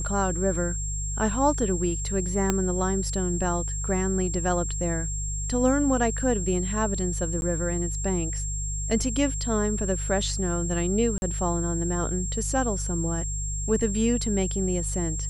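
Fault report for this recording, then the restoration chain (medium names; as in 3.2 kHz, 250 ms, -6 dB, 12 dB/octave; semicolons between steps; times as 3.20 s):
hum 50 Hz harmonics 3 -31 dBFS
whine 7.5 kHz -32 dBFS
2.50 s: pop -9 dBFS
7.41–7.42 s: dropout 11 ms
11.18–11.22 s: dropout 41 ms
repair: de-click; band-stop 7.5 kHz, Q 30; de-hum 50 Hz, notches 3; interpolate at 7.41 s, 11 ms; interpolate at 11.18 s, 41 ms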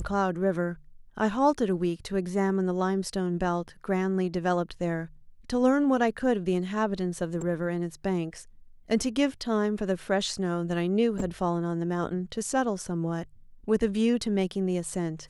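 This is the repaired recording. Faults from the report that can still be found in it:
2.50 s: pop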